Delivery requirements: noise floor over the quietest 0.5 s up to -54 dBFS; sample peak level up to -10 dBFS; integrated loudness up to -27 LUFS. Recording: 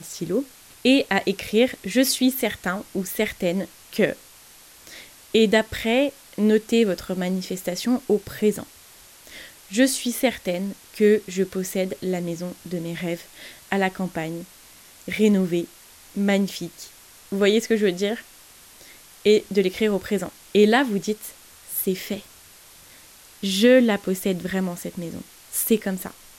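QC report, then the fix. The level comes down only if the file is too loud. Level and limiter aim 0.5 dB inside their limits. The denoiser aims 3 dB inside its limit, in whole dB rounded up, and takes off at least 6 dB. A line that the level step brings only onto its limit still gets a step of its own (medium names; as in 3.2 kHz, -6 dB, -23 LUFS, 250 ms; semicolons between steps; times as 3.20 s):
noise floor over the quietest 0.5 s -49 dBFS: fail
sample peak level -6.0 dBFS: fail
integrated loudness -23.0 LUFS: fail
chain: noise reduction 6 dB, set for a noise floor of -49 dBFS; trim -4.5 dB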